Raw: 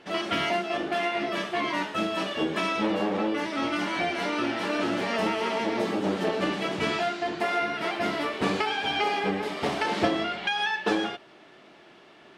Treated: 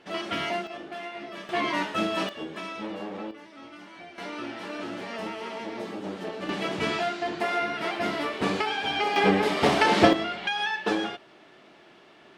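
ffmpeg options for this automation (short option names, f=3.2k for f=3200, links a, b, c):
-af "asetnsamples=n=441:p=0,asendcmd='0.67 volume volume -10dB;1.49 volume volume 1dB;2.29 volume volume -9dB;3.31 volume volume -17.5dB;4.18 volume volume -8dB;6.49 volume volume -0.5dB;9.16 volume volume 6.5dB;10.13 volume volume -1dB',volume=-3dB"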